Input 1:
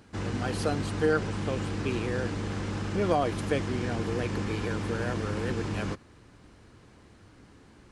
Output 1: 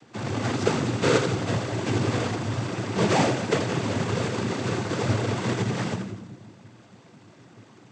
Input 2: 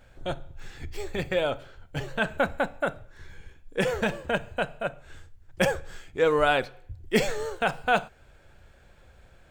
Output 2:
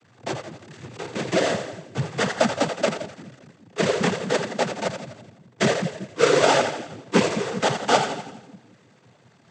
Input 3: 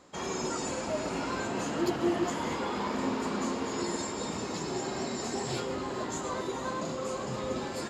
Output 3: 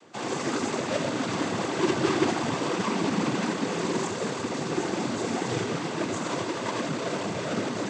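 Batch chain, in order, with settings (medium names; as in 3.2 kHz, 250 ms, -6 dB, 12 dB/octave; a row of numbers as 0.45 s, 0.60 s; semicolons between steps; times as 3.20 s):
square wave that keeps the level; two-band feedback delay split 330 Hz, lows 188 ms, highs 84 ms, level -7.5 dB; noise-vocoded speech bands 16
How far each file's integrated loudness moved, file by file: +4.5 LU, +4.5 LU, +4.5 LU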